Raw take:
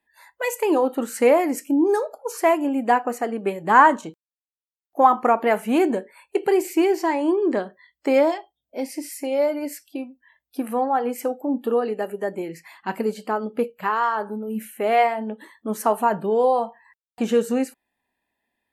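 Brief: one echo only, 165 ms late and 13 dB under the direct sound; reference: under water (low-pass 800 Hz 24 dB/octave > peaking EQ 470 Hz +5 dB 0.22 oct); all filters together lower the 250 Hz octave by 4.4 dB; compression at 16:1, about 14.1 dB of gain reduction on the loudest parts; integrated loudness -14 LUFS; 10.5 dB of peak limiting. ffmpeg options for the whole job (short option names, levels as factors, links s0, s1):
-af "equalizer=f=250:t=o:g=-6,acompressor=threshold=0.0708:ratio=16,alimiter=limit=0.075:level=0:latency=1,lowpass=f=800:w=0.5412,lowpass=f=800:w=1.3066,equalizer=f=470:t=o:w=0.22:g=5,aecho=1:1:165:0.224,volume=7.94"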